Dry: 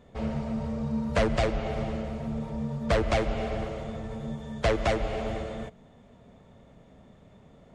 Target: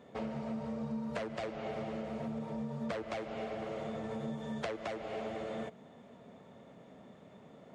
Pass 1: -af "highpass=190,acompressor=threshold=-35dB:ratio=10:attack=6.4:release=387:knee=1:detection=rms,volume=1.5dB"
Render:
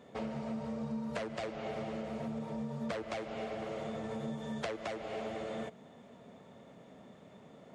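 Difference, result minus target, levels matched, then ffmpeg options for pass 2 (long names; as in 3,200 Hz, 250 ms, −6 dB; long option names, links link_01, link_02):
8,000 Hz band +3.0 dB
-af "highpass=190,highshelf=frequency=4000:gain=-4.5,acompressor=threshold=-35dB:ratio=10:attack=6.4:release=387:knee=1:detection=rms,volume=1.5dB"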